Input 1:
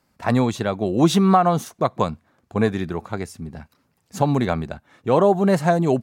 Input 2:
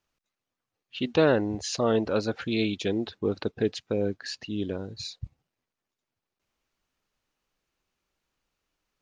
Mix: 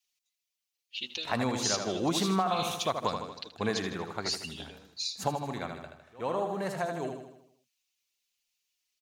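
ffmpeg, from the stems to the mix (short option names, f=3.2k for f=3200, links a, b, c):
-filter_complex "[0:a]adelay=1050,volume=-4dB,asplit=2[a][b];[b]volume=-7dB[c];[1:a]acrossover=split=410|3000[d][e][f];[e]acompressor=threshold=-38dB:ratio=6[g];[d][g][f]amix=inputs=3:normalize=0,aexciter=amount=7.2:drive=3.3:freq=2.1k,asplit=2[h][i];[i]adelay=5.1,afreqshift=0.69[j];[h][j]amix=inputs=2:normalize=1,volume=-10.5dB,asplit=3[k][l][m];[l]volume=-14.5dB[n];[m]apad=whole_len=311974[o];[a][o]sidechaingate=range=-26dB:threshold=-57dB:ratio=16:detection=peak[p];[c][n]amix=inputs=2:normalize=0,aecho=0:1:78|156|234|312|390|468|546|624:1|0.52|0.27|0.141|0.0731|0.038|0.0198|0.0103[q];[p][k][q]amix=inputs=3:normalize=0,lowshelf=f=490:g=-10,acompressor=threshold=-24dB:ratio=6"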